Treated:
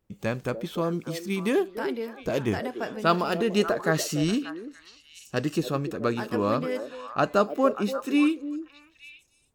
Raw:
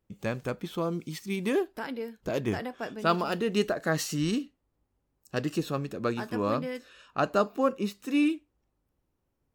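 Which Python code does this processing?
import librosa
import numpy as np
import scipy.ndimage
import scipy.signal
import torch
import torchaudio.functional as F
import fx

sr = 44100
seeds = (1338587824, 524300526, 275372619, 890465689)

y = fx.echo_stepped(x, sr, ms=292, hz=440.0, octaves=1.4, feedback_pct=70, wet_db=-7.0)
y = y * 10.0 ** (3.0 / 20.0)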